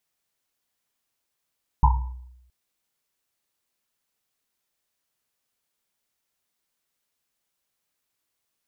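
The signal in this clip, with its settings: Risset drum length 0.67 s, pitch 62 Hz, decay 0.91 s, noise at 930 Hz, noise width 160 Hz, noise 25%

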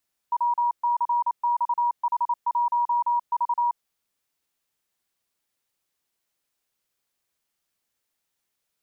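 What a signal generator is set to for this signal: Morse "WCXH1V" 28 wpm 957 Hz -19.5 dBFS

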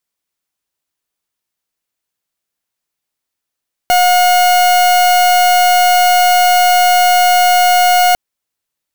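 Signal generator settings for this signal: pulse 720 Hz, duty 41% -9.5 dBFS 4.25 s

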